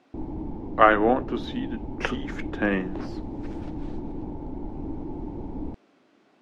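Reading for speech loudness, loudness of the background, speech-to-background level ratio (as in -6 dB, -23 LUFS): -25.0 LUFS, -36.0 LUFS, 11.0 dB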